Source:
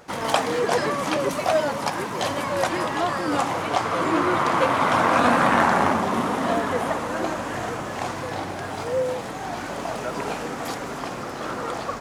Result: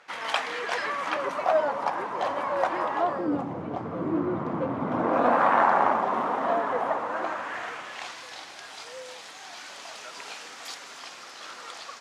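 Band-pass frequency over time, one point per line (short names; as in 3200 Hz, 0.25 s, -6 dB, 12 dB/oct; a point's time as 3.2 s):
band-pass, Q 1
0.78 s 2200 Hz
1.57 s 870 Hz
2.96 s 870 Hz
3.42 s 200 Hz
4.84 s 200 Hz
5.44 s 860 Hz
7.01 s 860 Hz
8.26 s 4400 Hz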